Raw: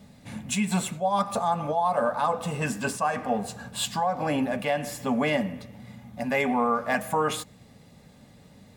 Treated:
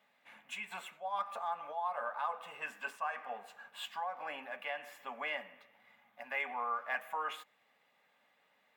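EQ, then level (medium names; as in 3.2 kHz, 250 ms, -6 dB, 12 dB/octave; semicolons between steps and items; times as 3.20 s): high-pass 1.1 kHz 12 dB/octave; treble shelf 4.8 kHz -9 dB; high-order bell 6.5 kHz -11.5 dB; -6.0 dB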